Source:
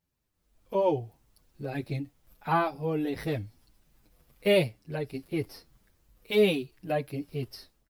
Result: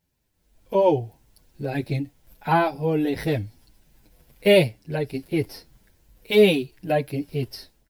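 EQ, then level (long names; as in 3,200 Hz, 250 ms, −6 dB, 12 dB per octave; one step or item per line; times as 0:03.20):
notch filter 1,200 Hz, Q 5.1
+7.0 dB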